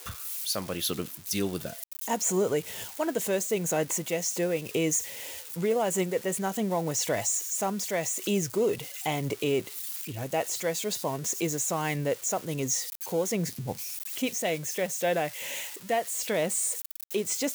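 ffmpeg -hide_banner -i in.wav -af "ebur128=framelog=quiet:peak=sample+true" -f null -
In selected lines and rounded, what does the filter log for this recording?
Integrated loudness:
  I:         -29.2 LUFS
  Threshold: -39.2 LUFS
Loudness range:
  LRA:         1.8 LU
  Threshold: -49.1 LUFS
  LRA low:   -30.0 LUFS
  LRA high:  -28.2 LUFS
Sample peak:
  Peak:      -17.0 dBFS
True peak:
  Peak:      -15.9 dBFS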